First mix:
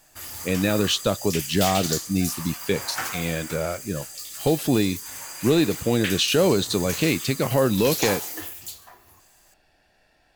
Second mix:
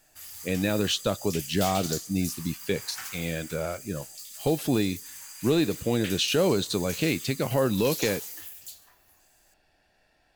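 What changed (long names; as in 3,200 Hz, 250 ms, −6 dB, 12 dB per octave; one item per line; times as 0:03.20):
speech −4.0 dB
background: add guitar amp tone stack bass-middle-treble 5-5-5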